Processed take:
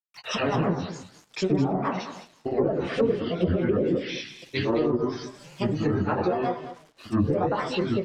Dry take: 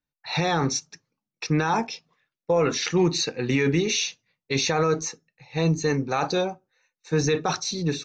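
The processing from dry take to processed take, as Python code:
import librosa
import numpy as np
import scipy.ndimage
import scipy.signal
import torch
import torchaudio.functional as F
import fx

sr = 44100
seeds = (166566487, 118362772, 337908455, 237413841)

p1 = fx.rev_double_slope(x, sr, seeds[0], early_s=0.51, late_s=2.5, knee_db=-26, drr_db=-2.5)
p2 = np.where(np.abs(p1) >= 10.0 ** (-45.0 / 20.0), p1, 0.0)
p3 = fx.granulator(p2, sr, seeds[1], grain_ms=138.0, per_s=22.0, spray_ms=100.0, spread_st=7)
p4 = fx.hum_notches(p3, sr, base_hz=60, count=2)
p5 = fx.env_lowpass_down(p4, sr, base_hz=500.0, full_db=-17.5)
y = p5 + fx.echo_single(p5, sr, ms=208, db=-12.0, dry=0)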